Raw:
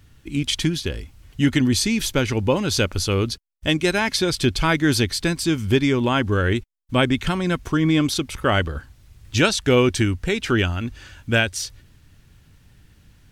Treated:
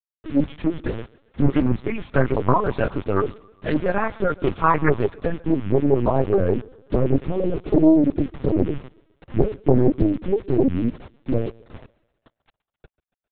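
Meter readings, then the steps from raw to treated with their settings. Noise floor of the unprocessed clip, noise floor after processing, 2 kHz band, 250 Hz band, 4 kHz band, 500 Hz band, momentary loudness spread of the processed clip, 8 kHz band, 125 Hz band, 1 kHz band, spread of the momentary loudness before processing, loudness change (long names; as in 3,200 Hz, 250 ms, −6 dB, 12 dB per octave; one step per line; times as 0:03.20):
−54 dBFS, below −85 dBFS, −9.0 dB, +0.5 dB, below −20 dB, +2.0 dB, 9 LU, below −40 dB, −1.5 dB, +2.0 dB, 9 LU, −1.0 dB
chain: spectral magnitudes quantised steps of 30 dB
high-pass filter 48 Hz 12 dB per octave
parametric band 310 Hz +2 dB 2.9 octaves
comb filter 7.1 ms, depth 67%
dynamic equaliser 190 Hz, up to +3 dB, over −35 dBFS, Q 6.2
in parallel at 0 dB: downward compressor 6 to 1, threshold −27 dBFS, peak gain reduction 18.5 dB
on the sum: low-pass filter sweep 1,100 Hz → 330 Hz, 0:04.62–0:08.18
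multi-voice chorus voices 2, 1.1 Hz, delay 12 ms, depth 3.3 ms
bit-depth reduction 6 bits, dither none
feedback echo with a high-pass in the loop 135 ms, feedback 55%, high-pass 260 Hz, level −21.5 dB
linear-prediction vocoder at 8 kHz pitch kept
highs frequency-modulated by the lows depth 0.8 ms
level −1.5 dB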